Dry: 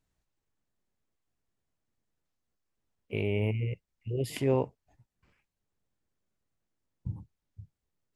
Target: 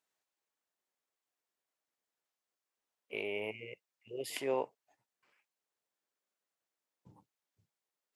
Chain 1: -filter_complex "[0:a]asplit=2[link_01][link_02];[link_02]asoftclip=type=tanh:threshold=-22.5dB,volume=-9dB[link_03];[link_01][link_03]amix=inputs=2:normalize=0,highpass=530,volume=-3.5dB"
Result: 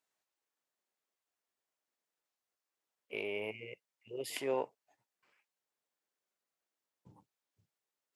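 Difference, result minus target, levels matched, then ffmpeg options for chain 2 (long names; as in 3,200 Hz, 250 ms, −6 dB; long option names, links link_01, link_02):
soft clipping: distortion +12 dB
-filter_complex "[0:a]asplit=2[link_01][link_02];[link_02]asoftclip=type=tanh:threshold=-14dB,volume=-9dB[link_03];[link_01][link_03]amix=inputs=2:normalize=0,highpass=530,volume=-3.5dB"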